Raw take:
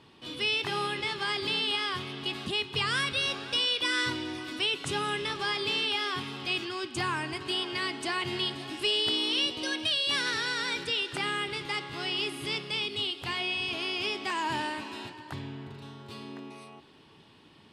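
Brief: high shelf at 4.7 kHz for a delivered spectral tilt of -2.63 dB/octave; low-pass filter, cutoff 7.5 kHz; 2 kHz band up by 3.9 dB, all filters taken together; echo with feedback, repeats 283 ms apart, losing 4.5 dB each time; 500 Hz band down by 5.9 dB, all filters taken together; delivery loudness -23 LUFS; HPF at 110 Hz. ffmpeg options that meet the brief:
-af "highpass=110,lowpass=7500,equalizer=f=500:t=o:g=-8.5,equalizer=f=2000:t=o:g=6.5,highshelf=f=4700:g=-4.5,aecho=1:1:283|566|849|1132|1415|1698|1981|2264|2547:0.596|0.357|0.214|0.129|0.0772|0.0463|0.0278|0.0167|0.01,volume=1.41"

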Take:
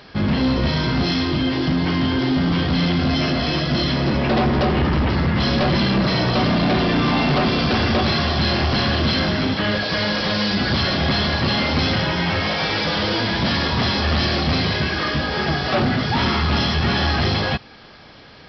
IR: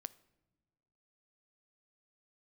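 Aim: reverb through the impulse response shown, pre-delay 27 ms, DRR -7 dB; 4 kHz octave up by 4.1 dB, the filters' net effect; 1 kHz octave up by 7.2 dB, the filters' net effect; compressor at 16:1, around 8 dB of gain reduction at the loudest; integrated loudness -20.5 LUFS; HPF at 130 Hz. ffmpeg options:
-filter_complex "[0:a]highpass=130,equalizer=f=1000:t=o:g=9,equalizer=f=4000:t=o:g=4.5,acompressor=threshold=0.112:ratio=16,asplit=2[s0][s1];[1:a]atrim=start_sample=2205,adelay=27[s2];[s1][s2]afir=irnorm=-1:irlink=0,volume=3.76[s3];[s0][s3]amix=inputs=2:normalize=0,volume=0.501"

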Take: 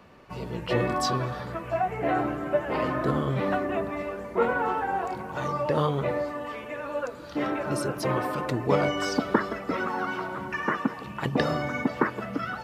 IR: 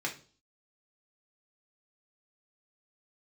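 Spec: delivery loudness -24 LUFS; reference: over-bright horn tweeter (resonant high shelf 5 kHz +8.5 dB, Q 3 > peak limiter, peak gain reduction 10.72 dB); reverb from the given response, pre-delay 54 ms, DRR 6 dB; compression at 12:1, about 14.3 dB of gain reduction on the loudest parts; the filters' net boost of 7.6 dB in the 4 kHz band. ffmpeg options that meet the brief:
-filter_complex "[0:a]equalizer=f=4000:t=o:g=9,acompressor=threshold=0.0282:ratio=12,asplit=2[s0][s1];[1:a]atrim=start_sample=2205,adelay=54[s2];[s1][s2]afir=irnorm=-1:irlink=0,volume=0.299[s3];[s0][s3]amix=inputs=2:normalize=0,highshelf=f=5000:t=q:w=3:g=8.5,volume=3.98,alimiter=limit=0.188:level=0:latency=1"

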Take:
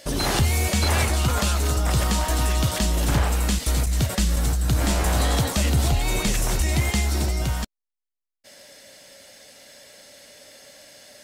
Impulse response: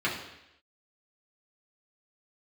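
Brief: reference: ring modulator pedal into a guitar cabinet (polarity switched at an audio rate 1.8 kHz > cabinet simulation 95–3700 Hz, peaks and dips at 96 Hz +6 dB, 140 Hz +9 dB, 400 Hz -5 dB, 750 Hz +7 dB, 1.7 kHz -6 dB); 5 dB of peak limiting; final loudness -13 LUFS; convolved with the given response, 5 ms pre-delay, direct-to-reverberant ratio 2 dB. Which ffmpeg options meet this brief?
-filter_complex "[0:a]alimiter=limit=0.126:level=0:latency=1,asplit=2[s0][s1];[1:a]atrim=start_sample=2205,adelay=5[s2];[s1][s2]afir=irnorm=-1:irlink=0,volume=0.224[s3];[s0][s3]amix=inputs=2:normalize=0,aeval=exprs='val(0)*sgn(sin(2*PI*1800*n/s))':c=same,highpass=95,equalizer=f=96:t=q:w=4:g=6,equalizer=f=140:t=q:w=4:g=9,equalizer=f=400:t=q:w=4:g=-5,equalizer=f=750:t=q:w=4:g=7,equalizer=f=1700:t=q:w=4:g=-6,lowpass=f=3700:w=0.5412,lowpass=f=3700:w=1.3066,volume=4.73"

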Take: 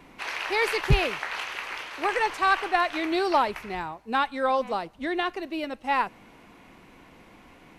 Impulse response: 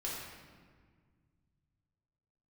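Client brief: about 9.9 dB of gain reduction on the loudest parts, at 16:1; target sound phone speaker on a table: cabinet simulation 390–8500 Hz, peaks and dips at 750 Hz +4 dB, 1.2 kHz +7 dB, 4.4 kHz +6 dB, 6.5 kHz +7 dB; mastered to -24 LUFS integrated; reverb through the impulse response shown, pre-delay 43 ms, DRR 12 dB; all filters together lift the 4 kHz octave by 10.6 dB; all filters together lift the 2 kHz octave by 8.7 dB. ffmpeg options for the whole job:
-filter_complex "[0:a]equalizer=f=2000:t=o:g=8,equalizer=f=4000:t=o:g=7,acompressor=threshold=0.0794:ratio=16,asplit=2[s0][s1];[1:a]atrim=start_sample=2205,adelay=43[s2];[s1][s2]afir=irnorm=-1:irlink=0,volume=0.188[s3];[s0][s3]amix=inputs=2:normalize=0,highpass=f=390:w=0.5412,highpass=f=390:w=1.3066,equalizer=f=750:t=q:w=4:g=4,equalizer=f=1200:t=q:w=4:g=7,equalizer=f=4400:t=q:w=4:g=6,equalizer=f=6500:t=q:w=4:g=7,lowpass=f=8500:w=0.5412,lowpass=f=8500:w=1.3066,volume=1.12"

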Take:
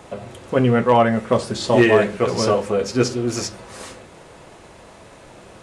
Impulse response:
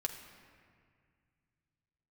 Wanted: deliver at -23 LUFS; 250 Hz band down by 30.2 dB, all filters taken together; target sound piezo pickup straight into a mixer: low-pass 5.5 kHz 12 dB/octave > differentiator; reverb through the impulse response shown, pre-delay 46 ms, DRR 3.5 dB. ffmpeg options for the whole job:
-filter_complex "[0:a]equalizer=f=250:t=o:g=-3,asplit=2[s0][s1];[1:a]atrim=start_sample=2205,adelay=46[s2];[s1][s2]afir=irnorm=-1:irlink=0,volume=0.596[s3];[s0][s3]amix=inputs=2:normalize=0,lowpass=5500,aderivative,volume=3.76"

